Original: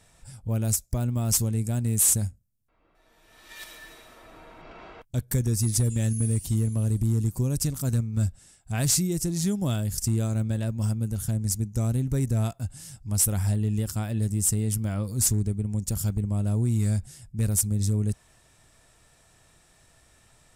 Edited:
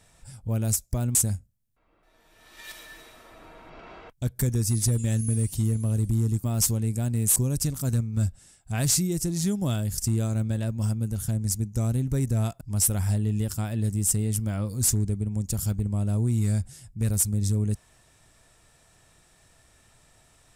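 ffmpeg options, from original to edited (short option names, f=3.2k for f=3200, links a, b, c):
-filter_complex "[0:a]asplit=5[a][b][c][d][e];[a]atrim=end=1.152[f];[b]atrim=start=2.068:end=7.362[g];[c]atrim=start=1.148:end=2.072[h];[d]atrim=start=7.358:end=12.612[i];[e]atrim=start=12.988[j];[f][g]acrossfade=d=0.004:c1=hsin:c2=hsin[k];[k][h]acrossfade=d=0.004:c1=hsin:c2=hsin[l];[l][i]acrossfade=d=0.004:c1=hsin:c2=hsin[m];[m][j]acrossfade=d=0.004:c1=hsin:c2=hsin"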